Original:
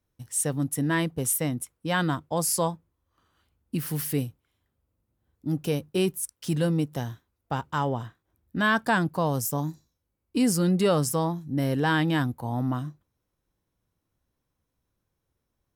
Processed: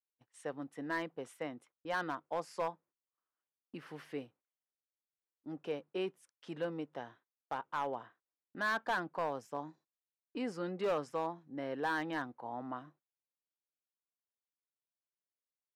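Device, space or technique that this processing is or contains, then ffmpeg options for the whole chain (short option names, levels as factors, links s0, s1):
walkie-talkie: -af "highpass=440,lowpass=2200,asoftclip=type=hard:threshold=0.0841,agate=range=0.126:threshold=0.00141:ratio=16:detection=peak,volume=0.473"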